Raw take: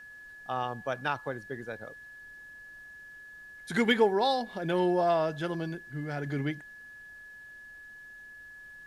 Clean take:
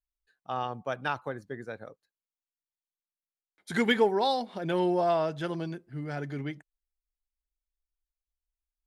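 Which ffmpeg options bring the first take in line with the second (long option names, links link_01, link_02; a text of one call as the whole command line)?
ffmpeg -i in.wav -af "bandreject=frequency=1700:width=30,agate=range=-21dB:threshold=-41dB,asetnsamples=nb_out_samples=441:pad=0,asendcmd='6.26 volume volume -3.5dB',volume=0dB" out.wav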